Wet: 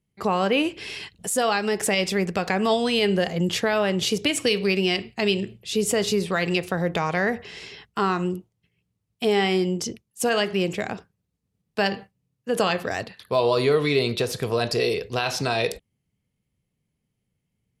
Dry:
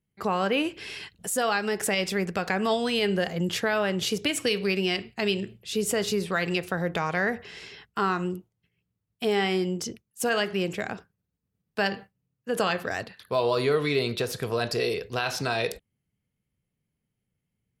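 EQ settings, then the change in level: low-pass 12 kHz 12 dB/octave; peaking EQ 1.5 kHz -4.5 dB 0.54 oct; +4.0 dB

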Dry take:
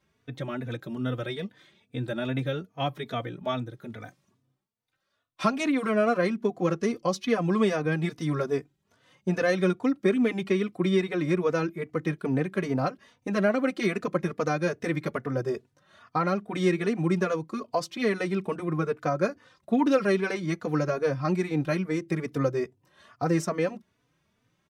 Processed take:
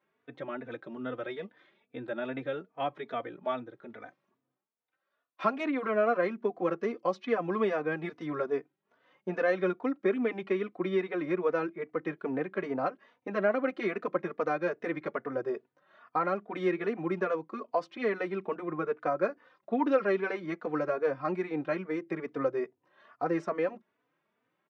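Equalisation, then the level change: band-pass 330–2100 Hz; -1.5 dB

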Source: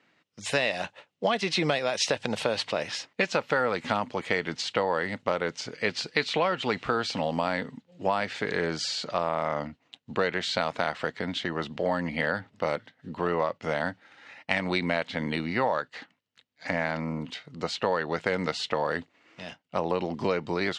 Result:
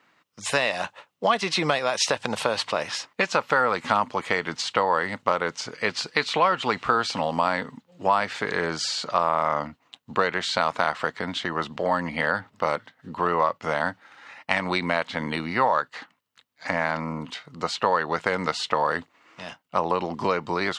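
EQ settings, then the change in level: peaking EQ 1.1 kHz +9.5 dB 0.93 oct; treble shelf 7.5 kHz +11 dB; 0.0 dB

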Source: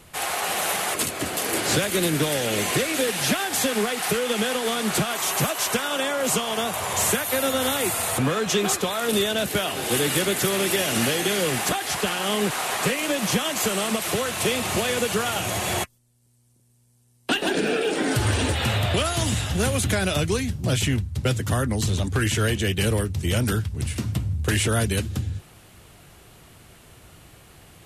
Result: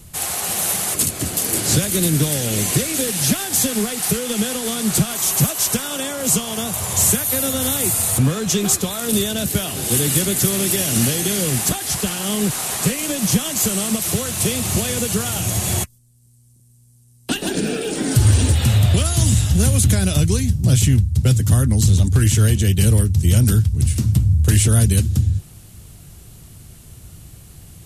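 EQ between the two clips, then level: tone controls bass +8 dB, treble +14 dB; bass shelf 310 Hz +9 dB; -5.0 dB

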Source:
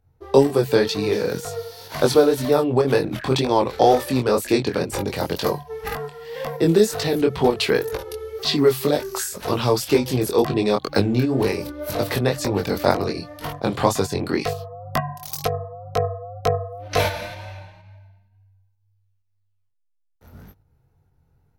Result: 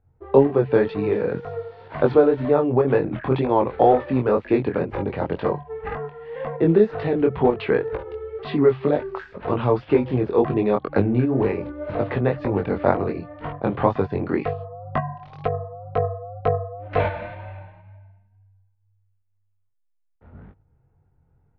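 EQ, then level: Bessel low-pass 1.7 kHz, order 6; 0.0 dB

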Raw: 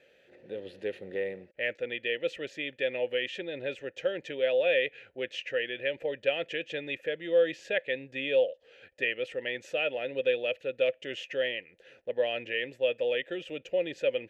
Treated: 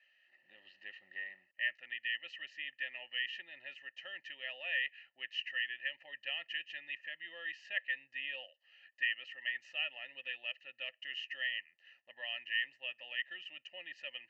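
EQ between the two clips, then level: two resonant band-passes 2.3 kHz, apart 0.72 oct; static phaser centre 2.3 kHz, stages 8; +6.5 dB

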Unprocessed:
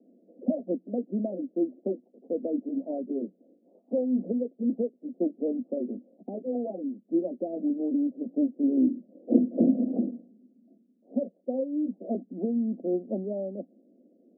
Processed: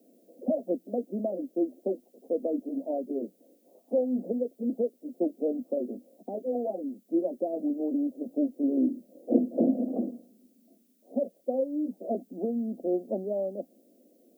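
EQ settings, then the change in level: tilt EQ +5 dB/octave; +7.0 dB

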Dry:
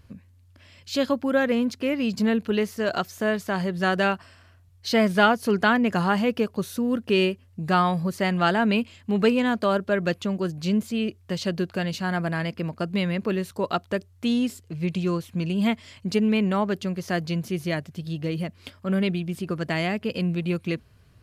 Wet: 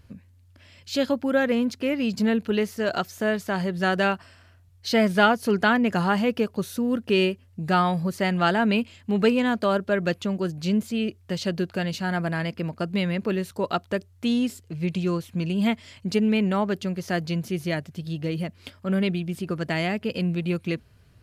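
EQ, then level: band-stop 1.1 kHz, Q 16; 0.0 dB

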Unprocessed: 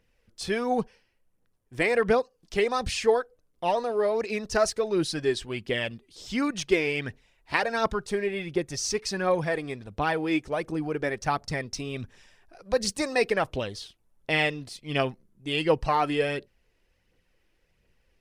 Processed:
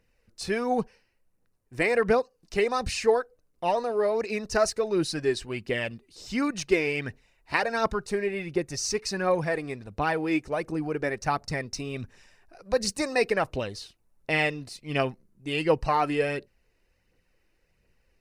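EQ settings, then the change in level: band-stop 3.3 kHz, Q 5.8; 0.0 dB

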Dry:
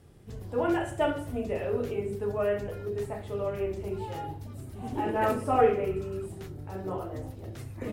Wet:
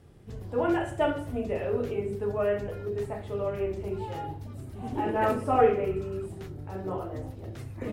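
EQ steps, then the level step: treble shelf 5.6 kHz -6 dB; +1.0 dB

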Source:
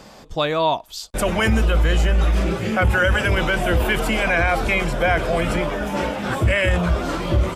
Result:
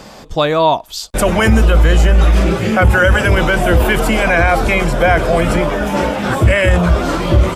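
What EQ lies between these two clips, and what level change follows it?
dynamic bell 2.8 kHz, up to -4 dB, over -32 dBFS, Q 0.95; +7.5 dB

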